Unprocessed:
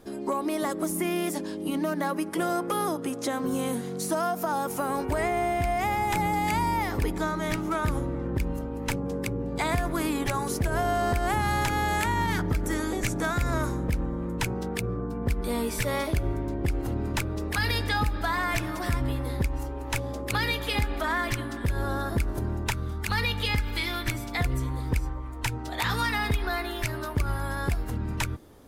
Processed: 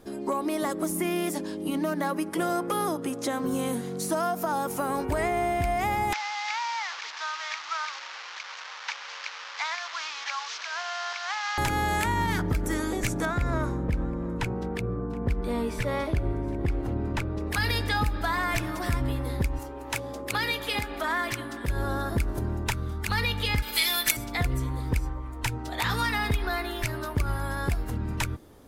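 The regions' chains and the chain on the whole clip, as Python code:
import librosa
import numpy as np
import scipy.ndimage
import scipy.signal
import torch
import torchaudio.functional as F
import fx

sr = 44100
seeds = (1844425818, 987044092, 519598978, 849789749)

y = fx.chain(x, sr, fx.delta_mod(bps=32000, step_db=-27.5),
    fx.highpass(hz=990.0, slope=24), at=(6.13, 11.58))
y = fx.chain(y, sr, fx.lowpass(hz=2400.0, slope=6),
    fx.echo_single(ms=722, db=-22.0), at=(13.25, 17.47))
y = fx.chain(y, sr, fx.highpass(hz=41.0, slope=12),
    fx.low_shelf(hz=160.0, db=-11.0), at=(19.59, 21.68))
y = fx.chain(y, sr, fx.riaa(side='recording'),
    fx.comb(ms=4.6, depth=0.62), at=(23.62, 24.17))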